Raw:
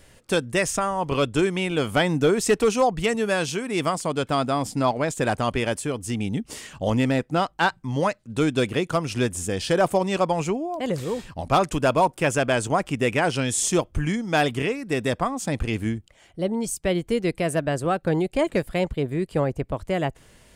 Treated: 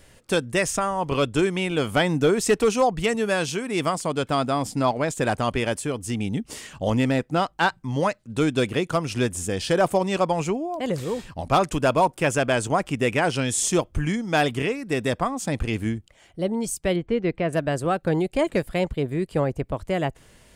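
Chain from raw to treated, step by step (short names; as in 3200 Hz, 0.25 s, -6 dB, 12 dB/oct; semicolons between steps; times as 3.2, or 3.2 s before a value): 16.96–17.53 LPF 2600 Hz 12 dB/oct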